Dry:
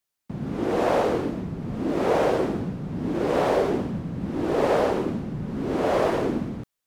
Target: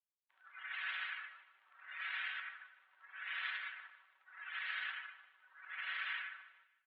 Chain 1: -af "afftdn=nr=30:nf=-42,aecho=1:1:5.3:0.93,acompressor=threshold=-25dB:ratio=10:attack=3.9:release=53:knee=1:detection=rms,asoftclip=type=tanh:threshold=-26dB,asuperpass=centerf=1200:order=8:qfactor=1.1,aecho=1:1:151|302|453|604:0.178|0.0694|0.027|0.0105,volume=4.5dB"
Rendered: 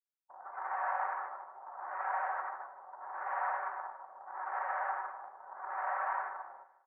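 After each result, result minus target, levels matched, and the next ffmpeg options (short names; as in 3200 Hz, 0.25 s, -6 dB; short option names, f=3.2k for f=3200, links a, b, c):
1000 Hz band +14.5 dB; soft clip: distortion +14 dB
-af "afftdn=nr=30:nf=-42,aecho=1:1:5.3:0.93,acompressor=threshold=-25dB:ratio=10:attack=3.9:release=53:knee=1:detection=rms,asoftclip=type=tanh:threshold=-26dB,asuperpass=centerf=2400:order=8:qfactor=1.1,aecho=1:1:151|302|453|604:0.178|0.0694|0.027|0.0105,volume=4.5dB"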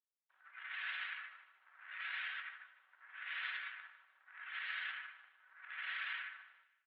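soft clip: distortion +14 dB
-af "afftdn=nr=30:nf=-42,aecho=1:1:5.3:0.93,acompressor=threshold=-25dB:ratio=10:attack=3.9:release=53:knee=1:detection=rms,asoftclip=type=tanh:threshold=-17dB,asuperpass=centerf=2400:order=8:qfactor=1.1,aecho=1:1:151|302|453|604:0.178|0.0694|0.027|0.0105,volume=4.5dB"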